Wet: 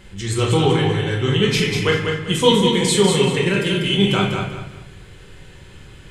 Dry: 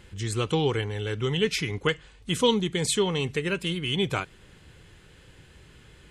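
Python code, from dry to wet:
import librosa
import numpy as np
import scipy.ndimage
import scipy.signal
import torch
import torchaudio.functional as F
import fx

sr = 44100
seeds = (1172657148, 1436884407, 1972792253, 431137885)

p1 = x + fx.echo_feedback(x, sr, ms=194, feedback_pct=30, wet_db=-5, dry=0)
p2 = fx.room_shoebox(p1, sr, seeds[0], volume_m3=160.0, walls='mixed', distance_m=1.1)
y = p2 * librosa.db_to_amplitude(4.0)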